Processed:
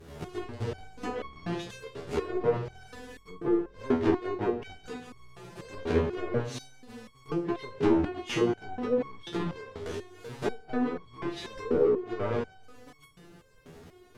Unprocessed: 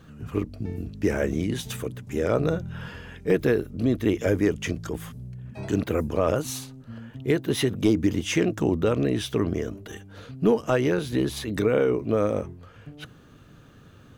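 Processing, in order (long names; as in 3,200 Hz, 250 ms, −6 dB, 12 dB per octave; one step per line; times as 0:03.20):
each half-wave held at its own peak
parametric band 440 Hz +12 dB 0.46 octaves
notch filter 510 Hz, Q 12
in parallel at +2 dB: downward compressor, threshold −26 dBFS, peak gain reduction 19 dB
on the sum: pitch vibrato 6.2 Hz 50 cents
flanger 0.86 Hz, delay 2.4 ms, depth 8.1 ms, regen −51%
treble cut that deepens with the level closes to 640 Hz, closed at −10 dBFS
dense smooth reverb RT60 1.1 s, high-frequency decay 0.95×, DRR 11 dB
step-sequenced resonator 4.1 Hz 82–1,100 Hz
level +2 dB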